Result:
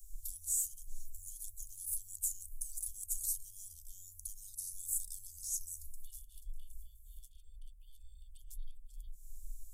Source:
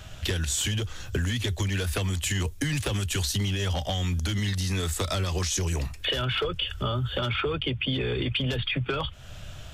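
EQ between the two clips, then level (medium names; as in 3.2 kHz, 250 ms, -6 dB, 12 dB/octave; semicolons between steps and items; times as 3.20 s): inverse Chebyshev band-stop 130–2400 Hz, stop band 70 dB; +3.5 dB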